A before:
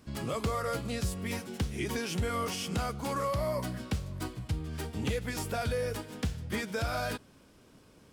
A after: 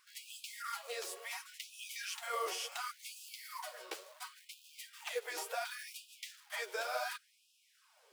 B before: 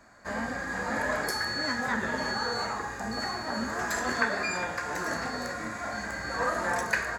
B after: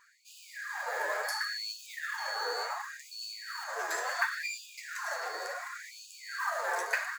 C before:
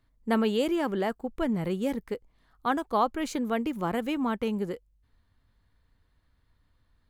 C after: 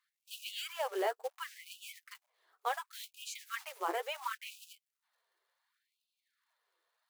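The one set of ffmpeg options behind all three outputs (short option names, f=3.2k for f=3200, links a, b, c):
-af "flanger=delay=3.7:depth=8.8:regen=12:speed=1.4:shape=triangular,acrusher=bits=5:mode=log:mix=0:aa=0.000001,afftfilt=real='re*gte(b*sr/1024,340*pow(2500/340,0.5+0.5*sin(2*PI*0.7*pts/sr)))':imag='im*gte(b*sr/1024,340*pow(2500/340,0.5+0.5*sin(2*PI*0.7*pts/sr)))':win_size=1024:overlap=0.75"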